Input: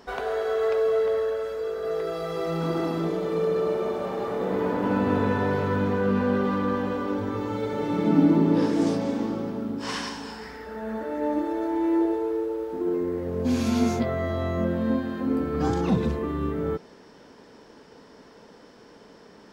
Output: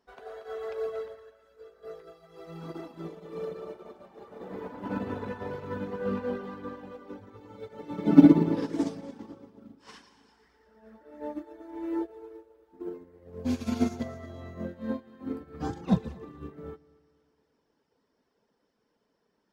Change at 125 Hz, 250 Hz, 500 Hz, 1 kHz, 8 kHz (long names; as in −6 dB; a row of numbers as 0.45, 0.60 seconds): −7.0 dB, −3.5 dB, −11.0 dB, −11.0 dB, below −10 dB